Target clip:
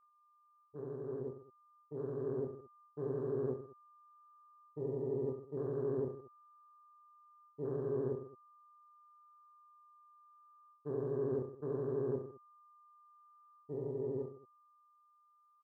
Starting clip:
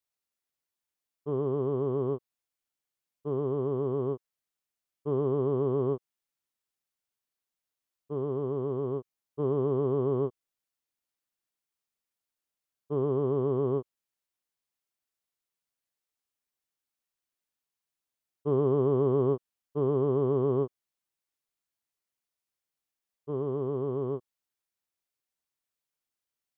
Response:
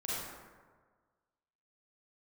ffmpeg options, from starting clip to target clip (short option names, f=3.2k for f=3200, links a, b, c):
-filter_complex "[0:a]asplit=2[a][b];[b]acrusher=bits=5:mode=log:mix=0:aa=0.000001,volume=-5dB[c];[a][c]amix=inputs=2:normalize=0,adynamicequalizer=threshold=0.0316:dfrequency=450:dqfactor=0.8:tfrequency=450:tqfactor=0.8:attack=5:release=100:ratio=0.375:range=1.5:mode=boostabove:tftype=bell,aeval=exprs='val(0)+0.00631*sin(2*PI*1200*n/s)':c=same,afwtdn=0.0316,areverse,acompressor=threshold=-33dB:ratio=10,areverse,lowshelf=f=180:g=2,aecho=1:1:40|92|159.6|247.5|361.7:0.631|0.398|0.251|0.158|0.1,dynaudnorm=f=520:g=13:m=6dB,atempo=1.7,volume=-9dB"